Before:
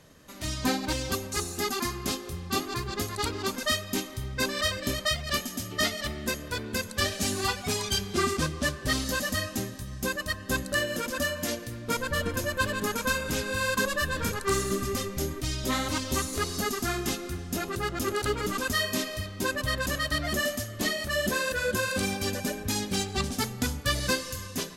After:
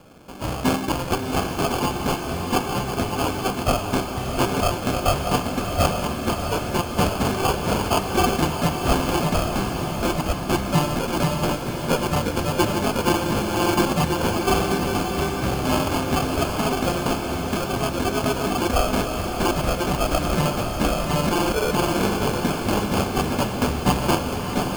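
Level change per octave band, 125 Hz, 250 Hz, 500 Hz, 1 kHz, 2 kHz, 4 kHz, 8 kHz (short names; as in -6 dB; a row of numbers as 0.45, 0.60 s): +9.5, +9.5, +8.5, +10.5, +0.5, +2.0, +1.0 dB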